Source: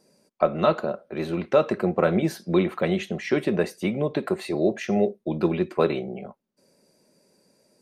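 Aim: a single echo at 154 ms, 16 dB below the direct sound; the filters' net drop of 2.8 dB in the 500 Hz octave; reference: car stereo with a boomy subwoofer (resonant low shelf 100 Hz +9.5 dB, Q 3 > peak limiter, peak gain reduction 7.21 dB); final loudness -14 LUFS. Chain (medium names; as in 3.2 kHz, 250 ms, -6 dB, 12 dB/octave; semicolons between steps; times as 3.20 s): resonant low shelf 100 Hz +9.5 dB, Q 3; peaking EQ 500 Hz -3 dB; delay 154 ms -16 dB; trim +15 dB; peak limiter -0.5 dBFS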